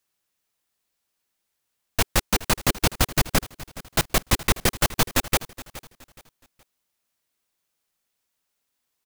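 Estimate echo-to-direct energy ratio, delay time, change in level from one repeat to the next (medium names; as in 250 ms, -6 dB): -17.0 dB, 420 ms, -10.0 dB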